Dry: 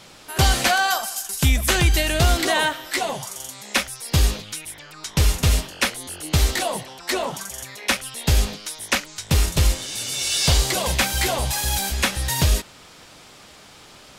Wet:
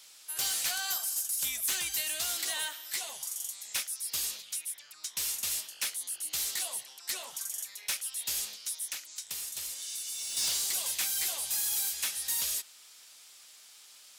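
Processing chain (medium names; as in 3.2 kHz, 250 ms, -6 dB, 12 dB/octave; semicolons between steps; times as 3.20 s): differentiator; saturation -23 dBFS, distortion -13 dB; 8.89–10.37 s: compression, threshold -33 dBFS, peak gain reduction 7 dB; trim -2.5 dB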